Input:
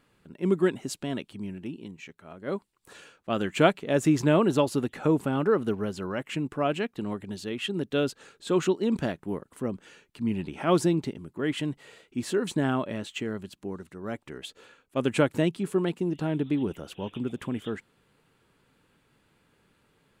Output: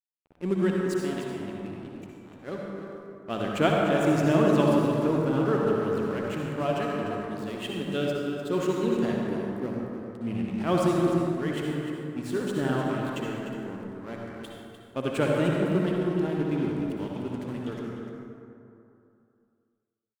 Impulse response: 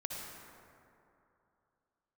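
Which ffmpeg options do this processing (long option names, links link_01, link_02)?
-filter_complex "[0:a]asettb=1/sr,asplit=3[link_01][link_02][link_03];[link_01]atrim=end=0.604[link_04];[link_02]atrim=start=0.6:end=1.34,asetpts=PTS-STARTPTS,afade=type=in:duration=0.004:curve=qsin,afade=type=out:start_time=0.736:duration=0.004:curve=qsin,highpass=frequency=140:width=0.5412,highpass=frequency=140:width=1.3066[link_05];[link_03]atrim=start=1.336[link_06];[link_04][link_05]acrossfade=duration=0.004:curve1=hsin:curve2=qsin[link_07];[link_07][link_06]acrossfade=duration=0.004:curve1=qsin:curve2=hsin,aeval=exprs='sgn(val(0))*max(abs(val(0))-0.00891,0)':channel_layout=same,aecho=1:1:300:0.316[link_08];[1:a]atrim=start_sample=2205[link_09];[link_08][link_09]afir=irnorm=-1:irlink=0"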